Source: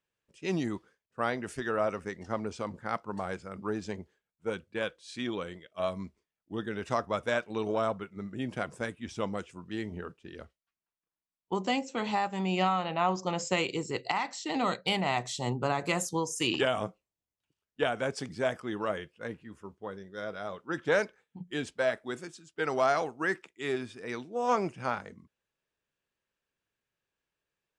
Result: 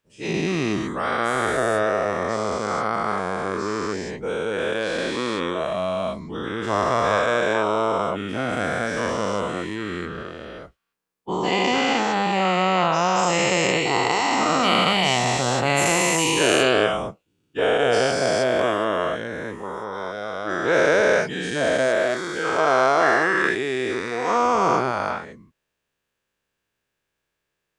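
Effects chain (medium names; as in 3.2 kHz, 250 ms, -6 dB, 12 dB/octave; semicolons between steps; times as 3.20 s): every event in the spectrogram widened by 480 ms; trim +2 dB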